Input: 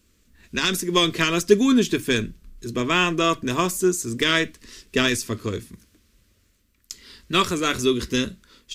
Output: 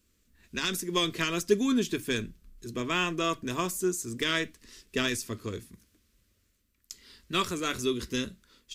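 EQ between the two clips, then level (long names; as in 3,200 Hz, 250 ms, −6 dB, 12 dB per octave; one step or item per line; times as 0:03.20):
high-shelf EQ 9,500 Hz +4.5 dB
−8.5 dB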